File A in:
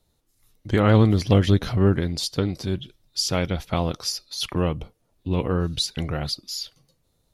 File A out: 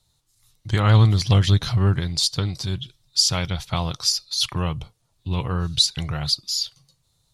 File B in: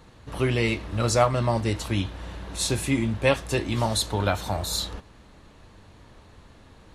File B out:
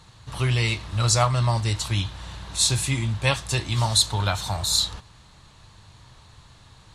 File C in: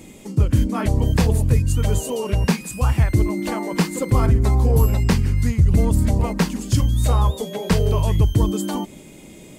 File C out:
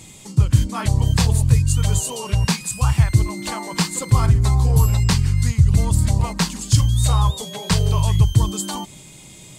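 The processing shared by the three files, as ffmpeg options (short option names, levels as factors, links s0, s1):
-af "equalizer=f=125:t=o:w=1:g=9,equalizer=f=250:t=o:w=1:g=-7,equalizer=f=500:t=o:w=1:g=-5,equalizer=f=1000:t=o:w=1:g=5,equalizer=f=4000:t=o:w=1:g=8,equalizer=f=8000:t=o:w=1:g=9,volume=0.75"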